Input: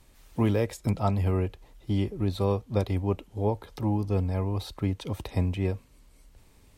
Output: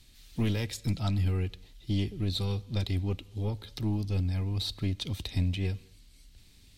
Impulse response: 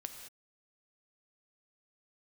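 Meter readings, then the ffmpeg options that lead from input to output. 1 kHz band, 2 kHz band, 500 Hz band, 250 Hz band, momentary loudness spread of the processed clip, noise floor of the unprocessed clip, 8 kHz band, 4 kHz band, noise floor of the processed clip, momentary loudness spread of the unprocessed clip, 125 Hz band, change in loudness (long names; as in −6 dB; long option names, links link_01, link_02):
−11.5 dB, −1.0 dB, −10.5 dB, −4.5 dB, 5 LU, −57 dBFS, can't be measured, +7.5 dB, −57 dBFS, 6 LU, −1.5 dB, −3.0 dB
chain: -filter_complex "[0:a]equalizer=frequency=500:width_type=o:width=1:gain=-9,equalizer=frequency=1000:width_type=o:width=1:gain=-11,equalizer=frequency=4000:width_type=o:width=1:gain=10,aeval=exprs='(tanh(10*val(0)+0.4)-tanh(0.4))/10':channel_layout=same,asplit=2[link_01][link_02];[1:a]atrim=start_sample=2205[link_03];[link_02][link_03]afir=irnorm=-1:irlink=0,volume=-12dB[link_04];[link_01][link_04]amix=inputs=2:normalize=0"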